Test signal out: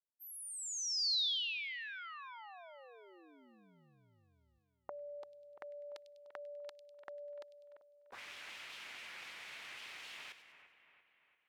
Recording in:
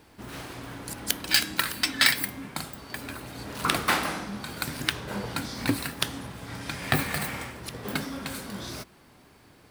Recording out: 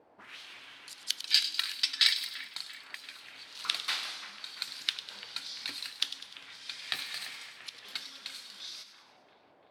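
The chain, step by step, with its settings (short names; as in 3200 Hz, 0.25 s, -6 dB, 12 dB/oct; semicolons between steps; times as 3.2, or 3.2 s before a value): auto-wah 500–4100 Hz, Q 2.1, up, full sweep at -34.5 dBFS; split-band echo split 2700 Hz, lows 0.342 s, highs 0.1 s, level -11 dB; gain +1 dB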